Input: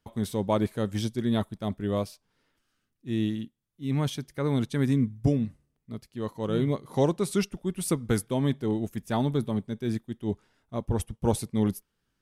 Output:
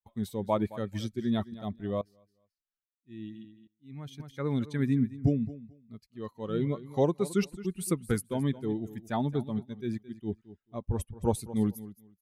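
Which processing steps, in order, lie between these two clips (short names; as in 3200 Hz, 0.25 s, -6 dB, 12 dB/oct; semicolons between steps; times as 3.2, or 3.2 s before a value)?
per-bin expansion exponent 1.5; dynamic EQ 5400 Hz, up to -4 dB, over -51 dBFS, Q 0.71; feedback echo 0.218 s, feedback 18%, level -16.5 dB; 2.01–4.2 dB-ramp tremolo swelling 1.2 Hz, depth 20 dB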